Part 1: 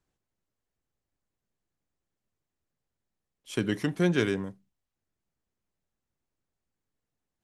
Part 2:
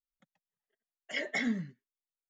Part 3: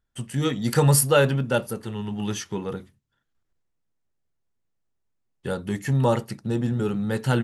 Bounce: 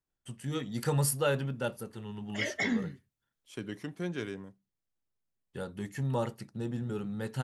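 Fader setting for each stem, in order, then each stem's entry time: -11.0, +1.0, -10.5 dB; 0.00, 1.25, 0.10 s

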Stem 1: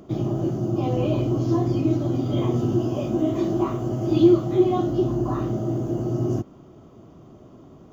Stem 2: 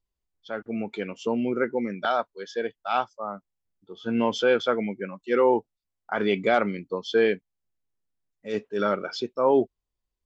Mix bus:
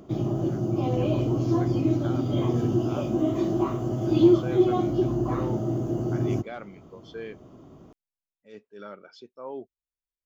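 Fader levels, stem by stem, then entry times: -2.0, -17.0 dB; 0.00, 0.00 s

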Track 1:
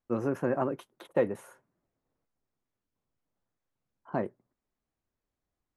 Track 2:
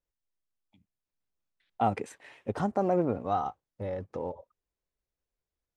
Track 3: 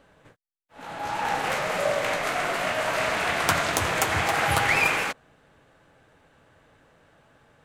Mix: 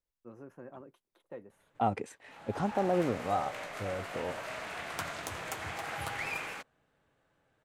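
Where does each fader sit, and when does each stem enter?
-19.5, -2.5, -15.0 dB; 0.15, 0.00, 1.50 s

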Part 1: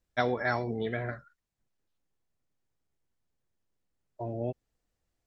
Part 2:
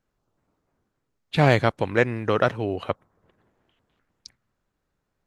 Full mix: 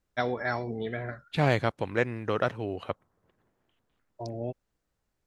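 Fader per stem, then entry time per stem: -1.0, -6.5 dB; 0.00, 0.00 s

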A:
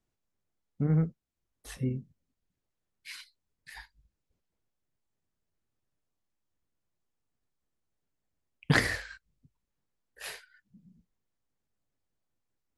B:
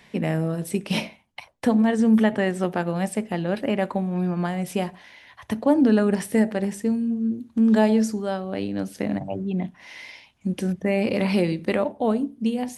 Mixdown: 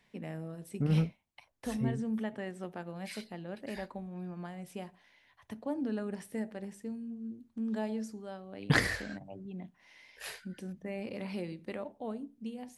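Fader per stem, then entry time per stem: -2.0, -17.0 dB; 0.00, 0.00 s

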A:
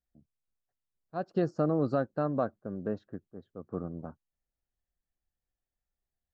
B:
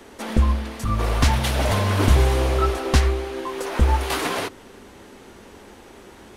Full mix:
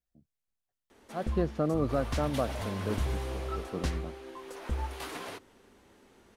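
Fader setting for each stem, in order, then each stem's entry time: -1.0, -15.5 dB; 0.00, 0.90 s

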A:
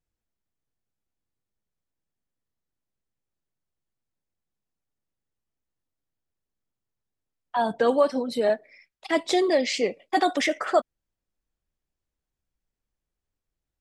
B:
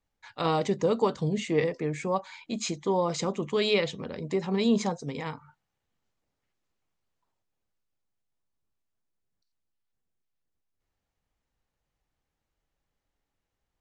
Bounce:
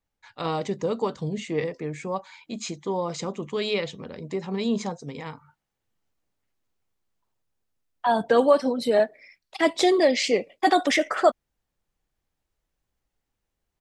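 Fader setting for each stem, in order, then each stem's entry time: +2.5, -1.5 dB; 0.50, 0.00 s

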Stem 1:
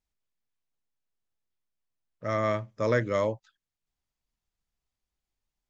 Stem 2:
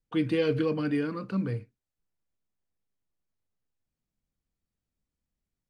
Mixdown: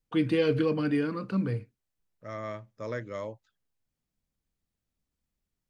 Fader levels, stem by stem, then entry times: -10.0, +1.0 dB; 0.00, 0.00 s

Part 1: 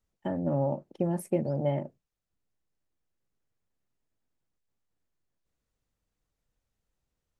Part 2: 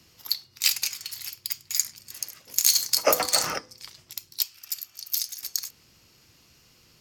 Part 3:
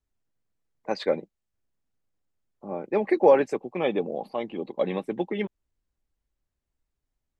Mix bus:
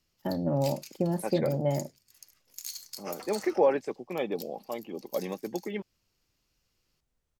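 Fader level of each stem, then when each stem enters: +0.5, -19.5, -6.0 dB; 0.00, 0.00, 0.35 s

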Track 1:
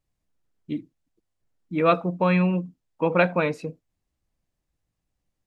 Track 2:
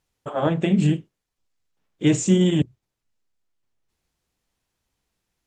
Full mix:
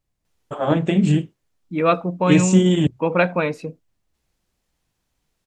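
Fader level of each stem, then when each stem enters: +2.0, +2.0 dB; 0.00, 0.25 s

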